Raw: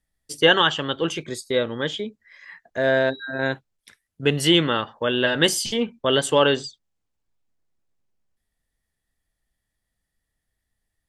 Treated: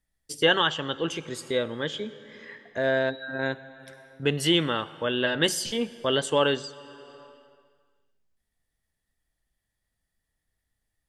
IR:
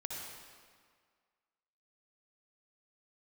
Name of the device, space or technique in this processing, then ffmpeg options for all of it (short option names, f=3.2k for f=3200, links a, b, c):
compressed reverb return: -filter_complex "[0:a]asplit=2[a][b];[1:a]atrim=start_sample=2205[c];[b][c]afir=irnorm=-1:irlink=0,acompressor=threshold=-34dB:ratio=6,volume=-2.5dB[d];[a][d]amix=inputs=2:normalize=0,asettb=1/sr,asplit=3[e][f][g];[e]atrim=end=6.154[h];[f]atrim=start=6.15:end=6.6,asetpts=PTS-STARTPTS,afade=t=in:d=0.004:c=qsin,afade=t=out:st=0.446:d=0.004:c=qsin,lowpass=9.7k[i];[g]atrim=start=6.596[j];[h][i]acrossfade=d=0.004:c1=hsin:c2=qsin[k];[k][j]acrossfade=d=0.004:c1=qsin:c2=hsin,volume=-5.5dB"